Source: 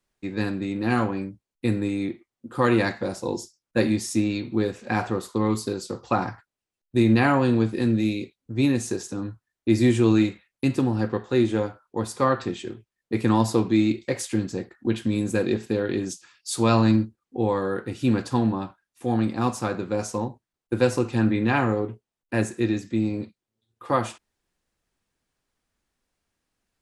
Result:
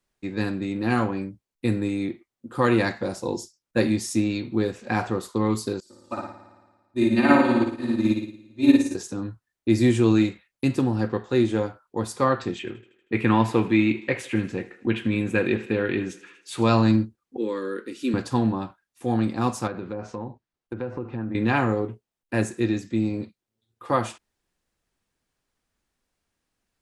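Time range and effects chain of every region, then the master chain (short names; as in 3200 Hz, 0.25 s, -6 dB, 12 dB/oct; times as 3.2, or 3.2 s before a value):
5.8–8.95 comb 3.3 ms, depth 76% + flutter echo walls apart 9.6 m, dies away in 1.4 s + upward expander 2.5:1, over -24 dBFS
12.59–16.62 EQ curve 710 Hz 0 dB, 2600 Hz +9 dB, 4900 Hz -10 dB + thinning echo 79 ms, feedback 62%, high-pass 230 Hz, level -17.5 dB
17.37–18.14 HPF 230 Hz + fixed phaser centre 310 Hz, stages 4
19.67–21.35 treble ducked by the level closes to 1500 Hz, closed at -20.5 dBFS + high shelf 7900 Hz -11.5 dB + compressor 3:1, threshold -29 dBFS
whole clip: dry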